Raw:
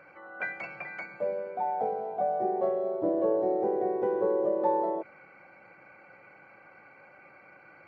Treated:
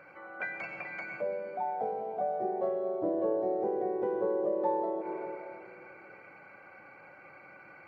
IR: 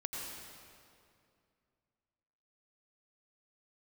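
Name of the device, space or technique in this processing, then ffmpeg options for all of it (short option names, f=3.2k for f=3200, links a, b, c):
ducked reverb: -filter_complex "[0:a]asplit=3[a][b][c];[1:a]atrim=start_sample=2205[d];[b][d]afir=irnorm=-1:irlink=0[e];[c]apad=whole_len=347505[f];[e][f]sidechaincompress=threshold=-40dB:ratio=8:attack=16:release=104,volume=0dB[g];[a][g]amix=inputs=2:normalize=0,volume=-4.5dB"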